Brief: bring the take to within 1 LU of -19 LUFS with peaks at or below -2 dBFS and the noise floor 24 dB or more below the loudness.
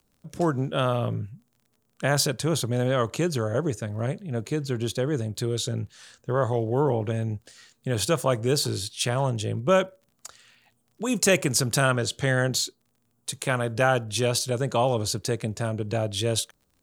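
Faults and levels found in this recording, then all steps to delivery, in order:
ticks 26/s; loudness -26.0 LUFS; peak -7.0 dBFS; loudness target -19.0 LUFS
-> de-click; gain +7 dB; limiter -2 dBFS

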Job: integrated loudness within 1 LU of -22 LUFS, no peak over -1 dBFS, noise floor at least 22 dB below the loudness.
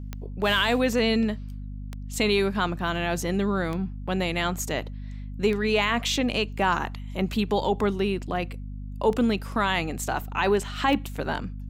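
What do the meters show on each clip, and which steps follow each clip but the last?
clicks 7; hum 50 Hz; harmonics up to 250 Hz; hum level -33 dBFS; loudness -25.5 LUFS; peak -10.0 dBFS; loudness target -22.0 LUFS
-> de-click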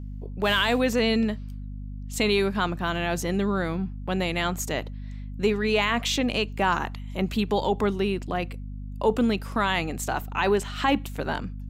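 clicks 0; hum 50 Hz; harmonics up to 250 Hz; hum level -33 dBFS
-> de-hum 50 Hz, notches 5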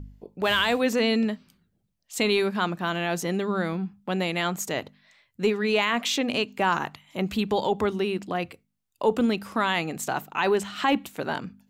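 hum none; loudness -26.0 LUFS; peak -10.5 dBFS; loudness target -22.0 LUFS
-> gain +4 dB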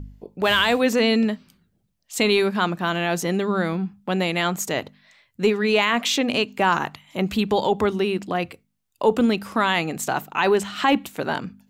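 loudness -22.0 LUFS; peak -6.5 dBFS; noise floor -71 dBFS

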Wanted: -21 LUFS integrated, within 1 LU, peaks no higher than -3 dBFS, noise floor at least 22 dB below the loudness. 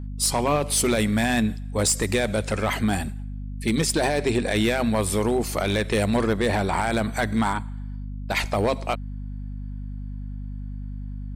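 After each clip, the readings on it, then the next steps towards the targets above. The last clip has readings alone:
clipped 0.9%; flat tops at -15.0 dBFS; hum 50 Hz; harmonics up to 250 Hz; hum level -30 dBFS; loudness -23.5 LUFS; peak -15.0 dBFS; loudness target -21.0 LUFS
-> clip repair -15 dBFS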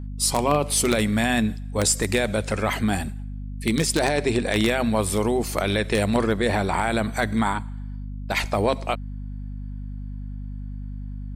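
clipped 0.0%; hum 50 Hz; harmonics up to 250 Hz; hum level -30 dBFS
-> notches 50/100/150/200/250 Hz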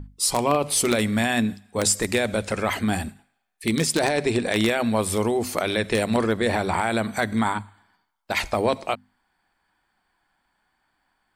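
hum none; loudness -23.5 LUFS; peak -6.0 dBFS; loudness target -21.0 LUFS
-> gain +2.5 dB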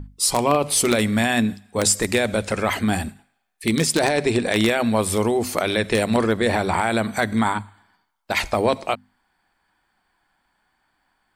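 loudness -21.0 LUFS; peak -3.5 dBFS; noise floor -70 dBFS

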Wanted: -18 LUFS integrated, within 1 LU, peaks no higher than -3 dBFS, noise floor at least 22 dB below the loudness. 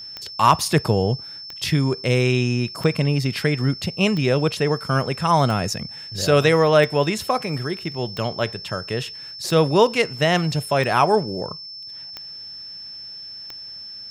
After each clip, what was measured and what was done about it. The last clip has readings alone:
clicks 11; steady tone 5300 Hz; tone level -34 dBFS; loudness -20.5 LUFS; peak -3.0 dBFS; loudness target -18.0 LUFS
-> de-click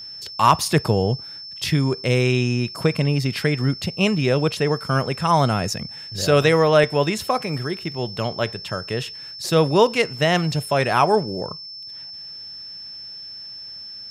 clicks 0; steady tone 5300 Hz; tone level -34 dBFS
-> notch 5300 Hz, Q 30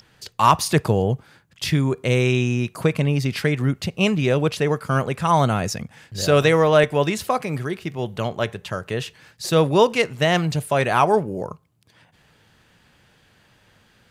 steady tone none; loudness -20.5 LUFS; peak -3.0 dBFS; loudness target -18.0 LUFS
-> gain +2.5 dB; limiter -3 dBFS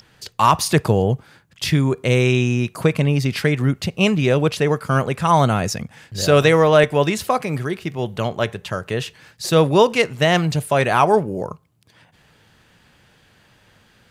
loudness -18.5 LUFS; peak -3.0 dBFS; noise floor -56 dBFS

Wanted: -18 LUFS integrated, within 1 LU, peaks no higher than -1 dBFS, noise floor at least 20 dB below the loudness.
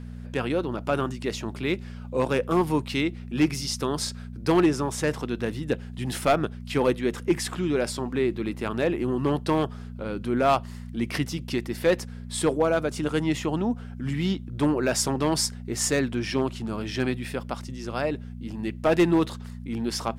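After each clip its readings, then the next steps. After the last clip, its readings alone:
clipped 0.3%; flat tops at -13.5 dBFS; hum 60 Hz; harmonics up to 240 Hz; hum level -35 dBFS; loudness -26.5 LUFS; peak -13.5 dBFS; loudness target -18.0 LUFS
-> clip repair -13.5 dBFS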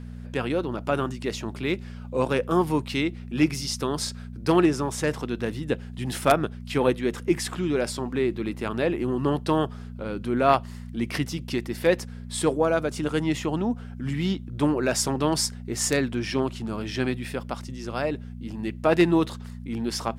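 clipped 0.0%; hum 60 Hz; harmonics up to 240 Hz; hum level -35 dBFS
-> de-hum 60 Hz, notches 4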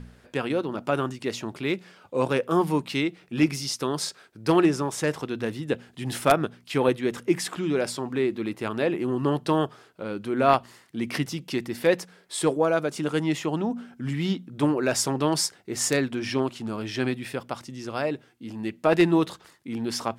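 hum none; loudness -26.5 LUFS; peak -4.5 dBFS; loudness target -18.0 LUFS
-> gain +8.5 dB; limiter -1 dBFS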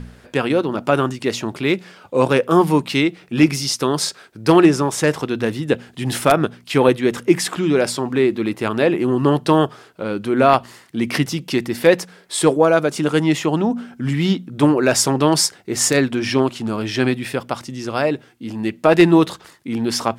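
loudness -18.5 LUFS; peak -1.0 dBFS; noise floor -49 dBFS

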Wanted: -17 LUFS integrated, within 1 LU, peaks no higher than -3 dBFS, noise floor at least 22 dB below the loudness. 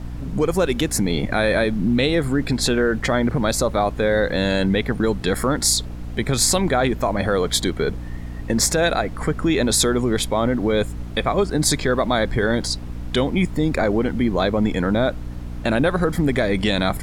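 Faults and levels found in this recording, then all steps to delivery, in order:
hum 60 Hz; harmonics up to 300 Hz; hum level -29 dBFS; noise floor -31 dBFS; noise floor target -43 dBFS; loudness -20.5 LUFS; peak -5.0 dBFS; loudness target -17.0 LUFS
-> notches 60/120/180/240/300 Hz; noise print and reduce 12 dB; gain +3.5 dB; limiter -3 dBFS

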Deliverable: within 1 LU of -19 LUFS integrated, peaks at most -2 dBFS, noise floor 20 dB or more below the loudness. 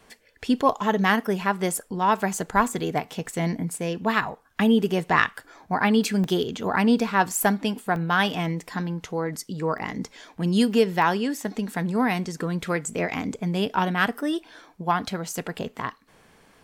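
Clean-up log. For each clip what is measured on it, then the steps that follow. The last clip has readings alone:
dropouts 5; longest dropout 1.1 ms; loudness -25.0 LUFS; peak -3.5 dBFS; loudness target -19.0 LUFS
-> interpolate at 2.2/6.24/7.96/9.78/11.02, 1.1 ms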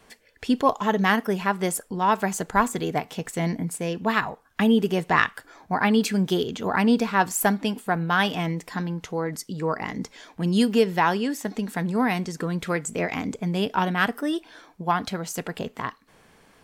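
dropouts 0; loudness -25.0 LUFS; peak -3.5 dBFS; loudness target -19.0 LUFS
-> gain +6 dB; limiter -2 dBFS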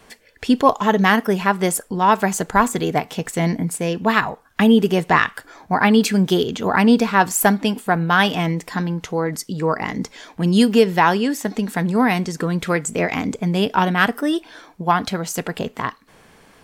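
loudness -19.0 LUFS; peak -2.0 dBFS; noise floor -52 dBFS

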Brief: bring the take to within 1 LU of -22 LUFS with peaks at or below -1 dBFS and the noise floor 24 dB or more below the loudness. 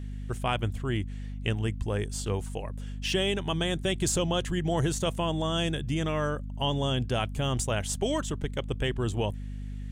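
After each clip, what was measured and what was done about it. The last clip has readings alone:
hum 50 Hz; harmonics up to 250 Hz; hum level -34 dBFS; loudness -30.0 LUFS; peak -13.0 dBFS; loudness target -22.0 LUFS
-> de-hum 50 Hz, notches 5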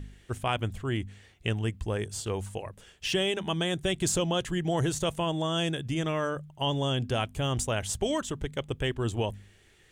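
hum none; loudness -30.5 LUFS; peak -14.0 dBFS; loudness target -22.0 LUFS
-> gain +8.5 dB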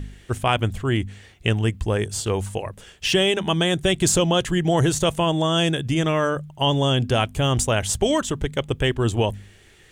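loudness -22.0 LUFS; peak -5.5 dBFS; noise floor -51 dBFS

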